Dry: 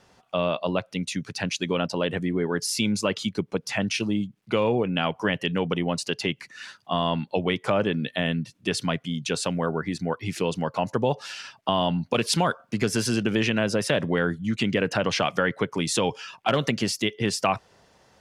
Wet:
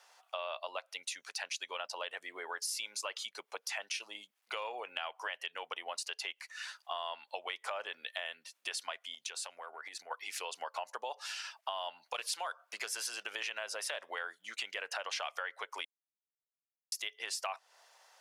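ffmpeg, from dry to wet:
ffmpeg -i in.wav -filter_complex "[0:a]asettb=1/sr,asplit=3[link_01][link_02][link_03];[link_01]atrim=end=9.144[link_04];[link_02]atrim=start=9.14:end=10.11,asetpts=PTS-STARTPTS,afade=type=in:duration=0.004:curve=qsin,afade=type=out:start_time=0.966:duration=0.004:curve=qsin,acompressor=threshold=-31dB:ratio=10:attack=3.2:release=140:knee=1:detection=peak[link_05];[link_03]atrim=start=10.106[link_06];[link_04][link_05]acrossfade=duration=0.004:curve1=hsin:curve2=qsin[link_07];[link_07][link_06]acrossfade=duration=0.004:curve1=qsin:curve2=hsin,asplit=3[link_08][link_09][link_10];[link_08]atrim=end=15.85,asetpts=PTS-STARTPTS,afade=type=out:start_time=15.846:duration=0.004:curve=hsin[link_11];[link_09]atrim=start=15.85:end=16.92,asetpts=PTS-STARTPTS,volume=0[link_12];[link_10]atrim=start=16.92,asetpts=PTS-STARTPTS,afade=type=in:duration=0.004:curve=hsin[link_13];[link_11][link_12][link_13]concat=n=3:v=0:a=1,highpass=frequency=680:width=0.5412,highpass=frequency=680:width=1.3066,highshelf=frequency=8600:gain=8,acompressor=threshold=-35dB:ratio=3,volume=-3dB" out.wav

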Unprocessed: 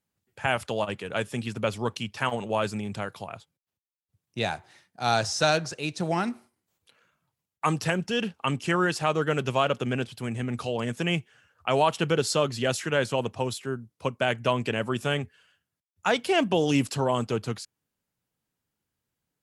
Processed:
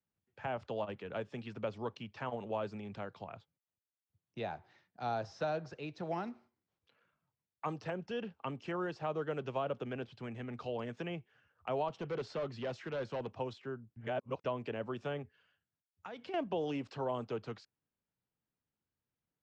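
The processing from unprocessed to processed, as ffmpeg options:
ffmpeg -i in.wav -filter_complex "[0:a]asettb=1/sr,asplit=3[link_01][link_02][link_03];[link_01]atrim=end=11.884[link_04];[link_02]atrim=start=11.88:end=13.31,asetpts=PTS-STARTPTS,afade=type=in:duration=0.004:curve=qsin,afade=type=out:start_time=1.426:duration=0.004:curve=qsin,asoftclip=type=hard:threshold=-23.5dB[link_05];[link_03]atrim=start=13.306[link_06];[link_04][link_05]acrossfade=duration=0.004:curve1=hsin:curve2=qsin[link_07];[link_07][link_06]acrossfade=duration=0.004:curve1=qsin:curve2=hsin,asettb=1/sr,asplit=3[link_08][link_09][link_10];[link_08]atrim=end=15.224[link_11];[link_09]atrim=start=15.22:end=16.34,asetpts=PTS-STARTPTS,afade=type=in:duration=0.004:curve=qsin,afade=type=out:start_time=1.116:duration=0.004:curve=qsin,acompressor=threshold=-33dB:ratio=6:attack=3.2:release=140:knee=1:detection=peak[link_12];[link_10]atrim=start=16.336[link_13];[link_11][link_12]acrossfade=duration=0.004:curve1=hsin:curve2=qsin[link_14];[link_14][link_13]acrossfade=duration=0.004:curve1=qsin:curve2=hsin,asplit=3[link_15][link_16][link_17];[link_15]atrim=end=13.962[link_18];[link_16]atrim=start=13.958:end=14.442,asetpts=PTS-STARTPTS,areverse[link_19];[link_17]atrim=start=14.438[link_20];[link_18][link_19]acrossfade=duration=0.004:curve1=hsin:curve2=hsin[link_21];[link_21][link_20]acrossfade=duration=0.004:curve1=hsin:curve2=hsin,lowpass=frequency=6000:width=0.5412,lowpass=frequency=6000:width=1.3066,aemphasis=mode=reproduction:type=75kf,acrossover=split=120|360|990|3300[link_22][link_23][link_24][link_25][link_26];[link_22]acompressor=threshold=-48dB:ratio=4[link_27];[link_23]acompressor=threshold=-39dB:ratio=4[link_28];[link_24]acompressor=threshold=-25dB:ratio=4[link_29];[link_25]acompressor=threshold=-42dB:ratio=4[link_30];[link_26]acompressor=threshold=-51dB:ratio=4[link_31];[link_27][link_28][link_29][link_30][link_31]amix=inputs=5:normalize=0,volume=-7.5dB" out.wav

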